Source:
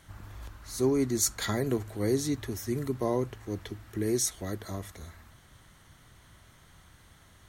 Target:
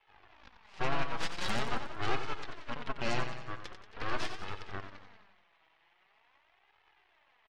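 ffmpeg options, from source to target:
-filter_complex "[0:a]aeval=exprs='max(val(0),0)':c=same,highpass=f=470:w=0.5412,highpass=f=470:w=1.3066,equalizer=f=510:t=q:w=4:g=-6,equalizer=f=860:t=q:w=4:g=5,equalizer=f=1400:t=q:w=4:g=-6,equalizer=f=2600:t=q:w=4:g=7,lowpass=f=2800:w=0.5412,lowpass=f=2800:w=1.3066,aeval=exprs='0.0708*(cos(1*acos(clip(val(0)/0.0708,-1,1)))-cos(1*PI/2))+0.0158*(cos(4*acos(clip(val(0)/0.0708,-1,1)))-cos(4*PI/2))+0.0355*(cos(8*acos(clip(val(0)/0.0708,-1,1)))-cos(8*PI/2))':c=same,asplit=2[s0][s1];[s1]aecho=0:1:91|182|273|364|455|546|637:0.376|0.214|0.122|0.0696|0.0397|0.0226|0.0129[s2];[s0][s2]amix=inputs=2:normalize=0,asplit=2[s3][s4];[s4]asetrate=52444,aresample=44100,atempo=0.840896,volume=0.355[s5];[s3][s5]amix=inputs=2:normalize=0,flanger=delay=2.3:depth=3.9:regen=37:speed=0.44:shape=sinusoidal"

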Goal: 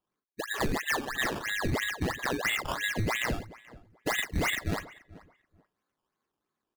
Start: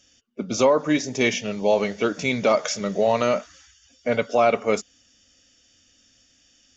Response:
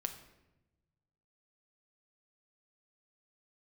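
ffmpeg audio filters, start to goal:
-filter_complex "[0:a]afftfilt=real='real(if(lt(b,272),68*(eq(floor(b/68),0)*3+eq(floor(b/68),1)*0+eq(floor(b/68),2)*1+eq(floor(b/68),3)*2)+mod(b,68),b),0)':imag='imag(if(lt(b,272),68*(eq(floor(b/68),0)*3+eq(floor(b/68),1)*0+eq(floor(b/68),2)*1+eq(floor(b/68),3)*2)+mod(b,68),b),0)':win_size=2048:overlap=0.75,highpass=230,asplit=2[s0][s1];[s1]adelay=39,volume=0.501[s2];[s0][s2]amix=inputs=2:normalize=0,acrossover=split=770[s3][s4];[s4]dynaudnorm=f=280:g=7:m=1.78[s5];[s3][s5]amix=inputs=2:normalize=0,afftdn=nr=23:nf=-27,tiltshelf=f=630:g=8,acrusher=samples=15:mix=1:aa=0.000001:lfo=1:lforange=15:lforate=3,volume=7.08,asoftclip=hard,volume=0.141,asplit=2[s6][s7];[s7]adelay=432,lowpass=f=1600:p=1,volume=0.0668,asplit=2[s8][s9];[s9]adelay=432,lowpass=f=1600:p=1,volume=0.21[s10];[s6][s8][s10]amix=inputs=3:normalize=0,acompressor=threshold=0.0562:ratio=6,adynamicequalizer=threshold=0.00501:dfrequency=5700:dqfactor=0.7:tfrequency=5700:tqfactor=0.7:attack=5:release=100:ratio=0.375:range=2.5:mode=cutabove:tftype=highshelf,volume=0.891"

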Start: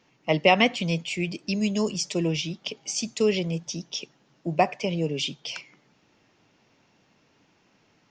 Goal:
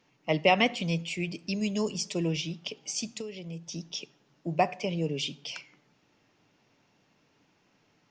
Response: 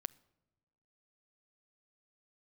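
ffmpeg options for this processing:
-filter_complex "[0:a]asettb=1/sr,asplit=3[s0][s1][s2];[s0]atrim=end=3.084[s3];[s1]atrim=start=3.08:end=3.72,asetpts=PTS-STARTPTS,afade=t=in:d=0.004:c=qsin,afade=t=out:st=0.636:d=0.004:c=qsin,acompressor=threshold=0.0251:ratio=10[s4];[s2]atrim=start=3.716[s5];[s3][s4]acrossfade=d=0.004:c1=hsin:c2=qsin[s6];[s6][s5]acrossfade=d=0.004:c1=qsin:c2=hsin[s7];[1:a]atrim=start_sample=2205,afade=t=out:st=0.31:d=0.01,atrim=end_sample=14112[s8];[s7][s8]afir=irnorm=-1:irlink=0,volume=0.841"

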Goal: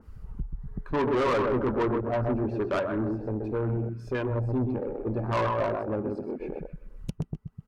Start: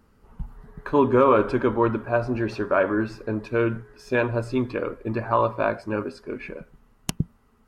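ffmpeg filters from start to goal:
-filter_complex "[0:a]asplit=2[s0][s1];[s1]adelay=128,lowpass=f=2900:p=1,volume=0.501,asplit=2[s2][s3];[s3]adelay=128,lowpass=f=2900:p=1,volume=0.35,asplit=2[s4][s5];[s5]adelay=128,lowpass=f=2900:p=1,volume=0.35,asplit=2[s6][s7];[s7]adelay=128,lowpass=f=2900:p=1,volume=0.35[s8];[s0][s2][s4][s6][s8]amix=inputs=5:normalize=0,acompressor=mode=upward:threshold=0.0447:ratio=2.5,afwtdn=0.0501,asettb=1/sr,asplit=3[s9][s10][s11];[s9]atrim=end=2.794[s12];[s10]atrim=start=2.79:end=5.04,asetpts=PTS-STARTPTS,afade=t=in:d=0.004:c=qsin,afade=t=out:st=2.246:d=0.004:c=qsin,acrossover=split=260[s13][s14];[s14]acompressor=threshold=0.0355:ratio=3[s15];[s13][s15]amix=inputs=2:normalize=0[s16];[s11]atrim=start=5.036[s17];[s12][s16]acrossfade=d=0.004:c1=hsin:c2=qsin[s18];[s18][s17]acrossfade=d=0.004:c1=qsin:c2=hsin,aphaser=in_gain=1:out_gain=1:delay=2.9:decay=0.28:speed=1.3:type=triangular,asoftclip=type=tanh:threshold=0.0794,adynamicequalizer=threshold=0.00794:dfrequency=2200:dqfactor=0.7:tfrequency=2200:tqfactor=0.7:attack=5:release=100:ratio=0.375:range=3:mode=cutabove:tftype=highshelf"

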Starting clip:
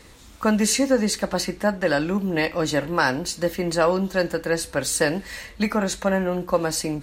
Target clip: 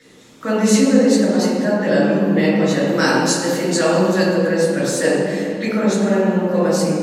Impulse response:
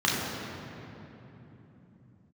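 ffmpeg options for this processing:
-filter_complex "[0:a]asettb=1/sr,asplit=3[s0][s1][s2];[s0]atrim=end=2.874[s3];[s1]atrim=start=2.87:end=4.26,asetpts=PTS-STARTPTS,afade=t=in:d=0.004:c=qsin,afade=t=out:st=1.386:d=0.004:c=qsin,equalizer=f=8600:t=o:w=2.4:g=10.5[s4];[s2]atrim=start=4.256[s5];[s3][s4]acrossfade=d=0.004:c1=hsin:c2=qsin[s6];[s6][s5]acrossfade=d=0.004:c1=qsin:c2=hsin[s7];[1:a]atrim=start_sample=2205,asetrate=79380,aresample=44100[s8];[s7][s8]afir=irnorm=-1:irlink=0,volume=0.398"

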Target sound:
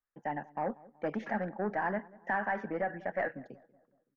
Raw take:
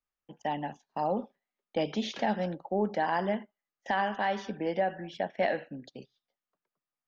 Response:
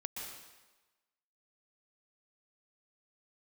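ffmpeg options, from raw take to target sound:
-filter_complex "[0:a]aeval=exprs='(tanh(14.1*val(0)+0.15)-tanh(0.15))/14.1':c=same,highshelf=f=2500:t=q:w=3:g=-12.5,atempo=1.7,asplit=2[s0][s1];[s1]adelay=188,lowpass=f=1200:p=1,volume=0.0891,asplit=2[s2][s3];[s3]adelay=188,lowpass=f=1200:p=1,volume=0.52,asplit=2[s4][s5];[s5]adelay=188,lowpass=f=1200:p=1,volume=0.52,asplit=2[s6][s7];[s7]adelay=188,lowpass=f=1200:p=1,volume=0.52[s8];[s2][s4][s6][s8]amix=inputs=4:normalize=0[s9];[s0][s9]amix=inputs=2:normalize=0,volume=0.75"

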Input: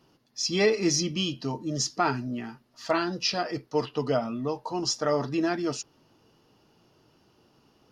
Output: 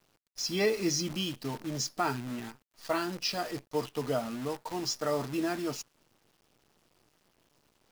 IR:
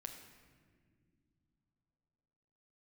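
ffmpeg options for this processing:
-af "acrusher=bits=7:dc=4:mix=0:aa=0.000001,volume=0.562"

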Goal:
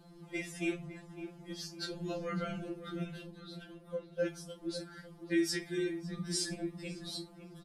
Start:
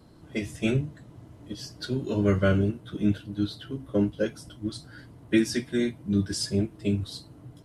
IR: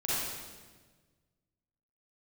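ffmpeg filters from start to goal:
-filter_complex "[0:a]asettb=1/sr,asplit=3[s0][s1][s2];[s0]atrim=end=3.244[s3];[s1]atrim=start=3.24:end=4.2,asetpts=PTS-STARTPTS,afade=t=in:d=0.004:c=qsin,afade=t=out:st=0.956:d=0.004:c=qsin,acompressor=threshold=0.0126:ratio=3[s4];[s2]atrim=start=4.196[s5];[s3][s4]acrossfade=d=0.004:c1=hsin:c2=qsin[s6];[s6][s5]acrossfade=d=0.004:c1=qsin:c2=hsin,alimiter=limit=0.0891:level=0:latency=1:release=88,asplit=2[s7][s8];[s8]adelay=555,lowpass=f=1500:p=1,volume=0.299,asplit=2[s9][s10];[s10]adelay=555,lowpass=f=1500:p=1,volume=0.43,asplit=2[s11][s12];[s12]adelay=555,lowpass=f=1500:p=1,volume=0.43,asplit=2[s13][s14];[s14]adelay=555,lowpass=f=1500:p=1,volume=0.43,asplit=2[s15][s16];[s16]adelay=555,lowpass=f=1500:p=1,volume=0.43[s17];[s7][s9][s11][s13][s15][s17]amix=inputs=6:normalize=0,afftfilt=real='re*2.83*eq(mod(b,8),0)':imag='im*2.83*eq(mod(b,8),0)':win_size=2048:overlap=0.75"

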